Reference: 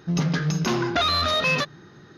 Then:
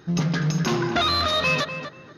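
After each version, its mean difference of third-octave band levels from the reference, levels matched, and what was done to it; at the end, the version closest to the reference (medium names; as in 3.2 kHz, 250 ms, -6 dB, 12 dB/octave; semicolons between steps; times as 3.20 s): 2.5 dB: tape echo 244 ms, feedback 24%, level -6.5 dB, low-pass 1.9 kHz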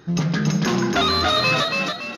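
5.5 dB: frequency-shifting echo 281 ms, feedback 40%, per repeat +37 Hz, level -3 dB; trim +1.5 dB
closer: first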